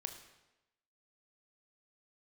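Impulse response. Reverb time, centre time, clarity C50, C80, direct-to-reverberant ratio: 1.0 s, 18 ms, 9.0 dB, 10.5 dB, 6.0 dB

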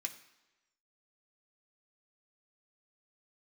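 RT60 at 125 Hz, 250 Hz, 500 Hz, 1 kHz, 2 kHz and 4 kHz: 0.85 s, 0.95 s, 1.1 s, 1.1 s, 1.0 s, 1.0 s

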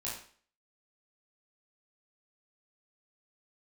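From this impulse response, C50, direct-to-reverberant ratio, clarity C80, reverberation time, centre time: 3.5 dB, -7.0 dB, 8.0 dB, 0.45 s, 42 ms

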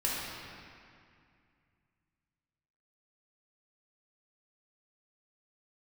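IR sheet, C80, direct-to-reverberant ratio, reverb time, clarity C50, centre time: -0.5 dB, -6.5 dB, 2.3 s, -2.5 dB, 147 ms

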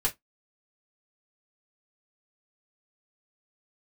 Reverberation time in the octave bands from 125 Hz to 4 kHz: 0.15 s, 0.15 s, 0.15 s, 0.15 s, 0.15 s, 0.15 s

